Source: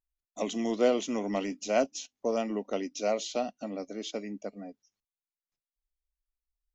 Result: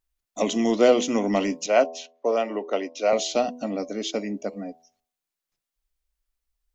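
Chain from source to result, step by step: 1.66–3.13 three-band isolator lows -16 dB, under 330 Hz, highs -13 dB, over 3800 Hz; de-hum 82.12 Hz, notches 13; gain +8.5 dB

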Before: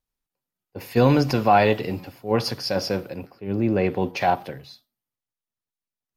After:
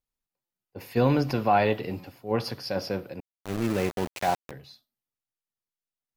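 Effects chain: dynamic EQ 7100 Hz, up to -6 dB, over -47 dBFS, Q 1.2; 3.2–4.51 sample gate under -24 dBFS; stuck buffer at 0.45, samples 256; gain -5 dB

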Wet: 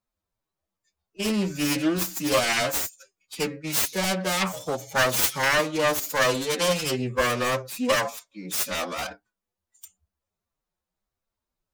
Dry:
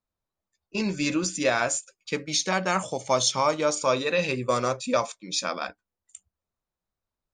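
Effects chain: self-modulated delay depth 0.5 ms; time stretch by phase-locked vocoder 1.6×; gain +2.5 dB

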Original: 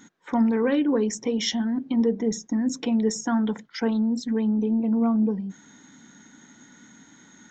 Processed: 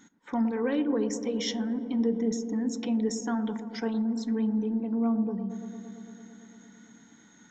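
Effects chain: on a send: dark delay 0.113 s, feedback 81%, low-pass 940 Hz, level -10.5 dB; on the sum: two-slope reverb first 0.26 s, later 1.7 s, from -27 dB, DRR 16.5 dB; gain -6 dB

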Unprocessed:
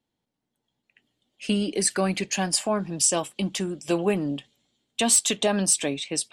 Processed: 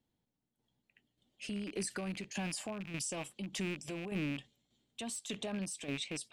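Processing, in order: rattling part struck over -39 dBFS, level -19 dBFS; low shelf 230 Hz +8.5 dB; compressor, threshold -23 dBFS, peak gain reduction 8.5 dB; limiter -24.5 dBFS, peak gain reduction 11 dB; tremolo saw down 1.7 Hz, depth 60%; gain -4 dB

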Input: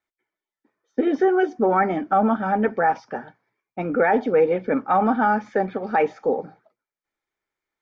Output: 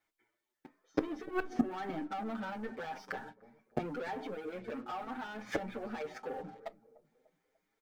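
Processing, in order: dynamic EQ 2400 Hz, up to +4 dB, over -34 dBFS, Q 0.72; limiter -17 dBFS, peak gain reduction 9.5 dB; compressor 20:1, threshold -27 dBFS, peak gain reduction 8 dB; sample leveller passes 3; 1.25–1.71 resonator 140 Hz, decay 0.18 s, harmonics all, mix 60%; flipped gate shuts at -25 dBFS, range -25 dB; dark delay 0.296 s, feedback 40%, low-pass 650 Hz, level -16.5 dB; on a send at -14 dB: reverb RT60 0.20 s, pre-delay 6 ms; on the sum: endless flanger 7 ms +0.91 Hz; gain +11.5 dB

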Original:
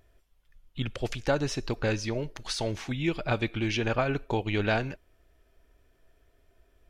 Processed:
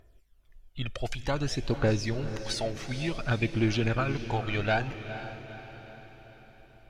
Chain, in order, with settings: phaser 0.55 Hz, delay 1.7 ms, feedback 53%; diffused feedback echo 0.469 s, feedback 52%, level -11 dB; gain -2.5 dB

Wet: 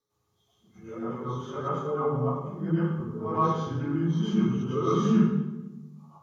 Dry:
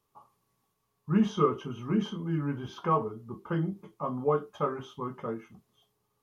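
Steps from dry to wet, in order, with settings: whole clip reversed; reverb RT60 1.1 s, pre-delay 93 ms, DRR -10 dB; gain -9 dB

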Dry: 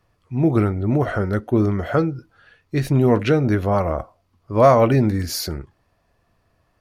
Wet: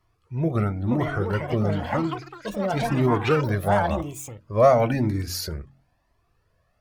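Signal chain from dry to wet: echoes that change speed 0.624 s, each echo +7 st, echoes 3, each echo -6 dB; de-hum 45.02 Hz, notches 7; cascading flanger rising 0.98 Hz

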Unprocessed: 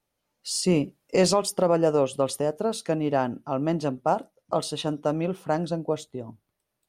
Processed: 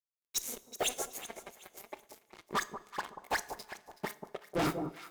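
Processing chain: phase scrambler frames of 0.1 s; HPF 49 Hz 12 dB/oct; tilt shelf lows -9 dB, about 1200 Hz; in parallel at +2 dB: compressor 6:1, threshold -36 dBFS, peak gain reduction 18.5 dB; on the sum: flipped gate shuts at -24 dBFS, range -37 dB; dispersion highs, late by 93 ms, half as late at 1700 Hz; fuzz box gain 47 dB, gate -57 dBFS; small resonant body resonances 290/1600 Hz, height 7 dB, ringing for 25 ms; on a send: echo with dull and thin repeats by turns 0.253 s, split 810 Hz, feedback 53%, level -10.5 dB; on the sum: two-slope reverb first 0.55 s, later 4 s, from -18 dB, DRR 15 dB; added harmonics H 3 -19 dB, 7 -16 dB, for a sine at 6.5 dBFS; speed mistake 33 rpm record played at 45 rpm; gain -5 dB

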